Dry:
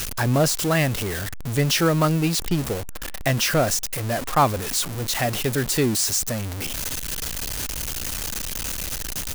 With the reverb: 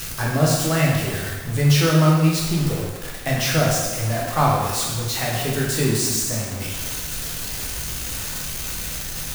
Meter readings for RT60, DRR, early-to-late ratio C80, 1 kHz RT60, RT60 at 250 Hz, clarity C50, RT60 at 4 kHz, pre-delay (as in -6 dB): 1.3 s, -4.0 dB, 3.0 dB, 1.3 s, 1.3 s, 0.0 dB, 1.2 s, 6 ms